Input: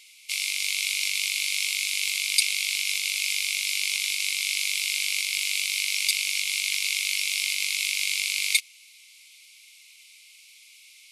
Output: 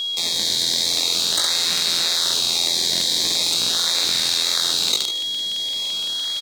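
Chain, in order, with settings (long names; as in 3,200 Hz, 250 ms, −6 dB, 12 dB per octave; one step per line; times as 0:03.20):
high-shelf EQ 3,800 Hz −8 dB
in parallel at −4 dB: sample-and-hold swept by an LFO 39×, swing 100% 0.24 Hz
on the sum: wrong playback speed 45 rpm record played at 78 rpm
automatic gain control gain up to 9.5 dB
meter weighting curve D
on a send: repeating echo 74 ms, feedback 31%, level −12.5 dB
on the sum: chorus effect 0.56 Hz, delay 17 ms, depth 5.1 ms
steady tone 3,300 Hz −31 dBFS
regular buffer underruns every 0.17 s, samples 2,048, repeat, from 0:00.88
envelope flattener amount 70%
level −8 dB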